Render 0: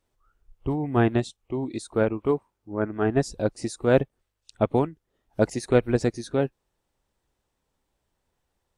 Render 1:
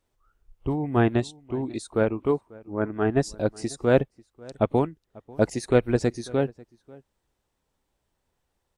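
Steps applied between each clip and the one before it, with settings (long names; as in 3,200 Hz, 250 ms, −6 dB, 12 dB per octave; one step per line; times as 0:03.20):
slap from a distant wall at 93 metres, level −23 dB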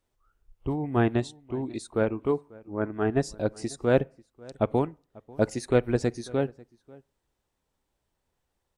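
on a send at −24 dB: low-pass filter 2,800 Hz 24 dB per octave + convolution reverb RT60 0.40 s, pre-delay 17 ms
on the sum: level −2.5 dB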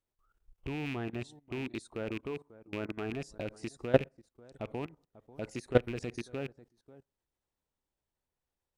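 loose part that buzzes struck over −35 dBFS, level −25 dBFS
output level in coarse steps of 18 dB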